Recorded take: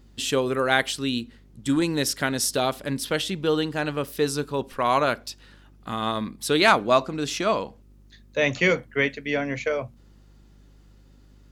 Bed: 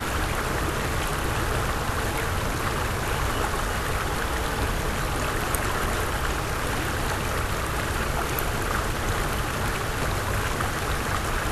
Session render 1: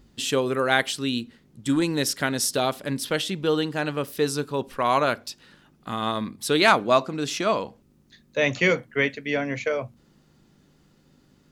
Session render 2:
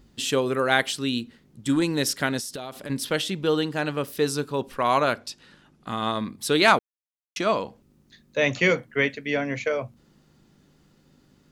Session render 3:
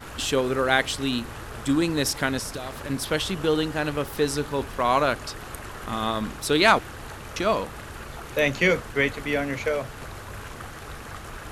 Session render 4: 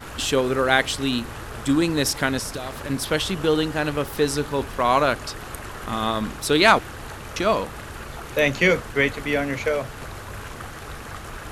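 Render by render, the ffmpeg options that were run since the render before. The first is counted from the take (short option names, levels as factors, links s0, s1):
-af "bandreject=f=50:t=h:w=4,bandreject=f=100:t=h:w=4"
-filter_complex "[0:a]asettb=1/sr,asplit=3[s0][s1][s2];[s0]atrim=end=2.394[s3];[s1]atrim=start=2.39:end=2.9,asetpts=PTS-STARTPTS,afade=t=in:d=0.004:c=qsin,afade=t=out:st=0.506:d=0.004:c=qsin,acompressor=threshold=0.0316:ratio=16:attack=3.2:release=140:knee=1:detection=peak[s4];[s2]atrim=start=2.896[s5];[s3][s4]acrossfade=d=0.004:c1=hsin:c2=qsin[s6];[s6][s5]acrossfade=d=0.004:c1=qsin:c2=hsin,asettb=1/sr,asplit=3[s7][s8][s9];[s7]atrim=end=5.134[s10];[s8]atrim=start=5.13:end=6.28,asetpts=PTS-STARTPTS,afade=t=in:d=0.004:c=qsin,afade=t=out:st=1.146:d=0.004:c=qsin,lowpass=11000[s11];[s9]atrim=start=6.276[s12];[s10][s11]acrossfade=d=0.004:c1=hsin:c2=qsin[s13];[s13][s12]acrossfade=d=0.004:c1=qsin:c2=hsin,asplit=3[s14][s15][s16];[s14]atrim=end=6.79,asetpts=PTS-STARTPTS,afade=t=out:st=6.786:d=0.004:c=hsin[s17];[s15]atrim=start=6.79:end=7.36,asetpts=PTS-STARTPTS,volume=0[s18];[s16]atrim=start=7.36,asetpts=PTS-STARTPTS,afade=t=in:d=0.004:c=hsin[s19];[s17][s18][s19]concat=n=3:v=0:a=1"
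-filter_complex "[1:a]volume=0.251[s0];[0:a][s0]amix=inputs=2:normalize=0"
-af "volume=1.33"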